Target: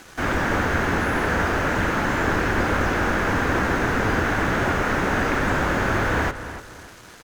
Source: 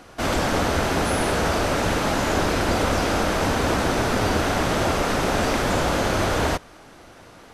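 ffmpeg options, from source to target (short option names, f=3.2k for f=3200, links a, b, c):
-filter_complex "[0:a]acrossover=split=2600[a][b];[b]acompressor=threshold=-48dB:ratio=4:attack=1:release=60[c];[a][c]amix=inputs=2:normalize=0,equalizer=f=630:t=o:w=0.67:g=-5,equalizer=f=1.6k:t=o:w=0.67:g=6,equalizer=f=6.3k:t=o:w=0.67:g=7,acrusher=bits=6:mix=0:aa=0.5,asplit=2[d][e];[e]adelay=303,lowpass=f=3.9k:p=1,volume=-12dB,asplit=2[f][g];[g]adelay=303,lowpass=f=3.9k:p=1,volume=0.34,asplit=2[h][i];[i]adelay=303,lowpass=f=3.9k:p=1,volume=0.34[j];[d][f][h][j]amix=inputs=4:normalize=0,asetrate=45938,aresample=44100"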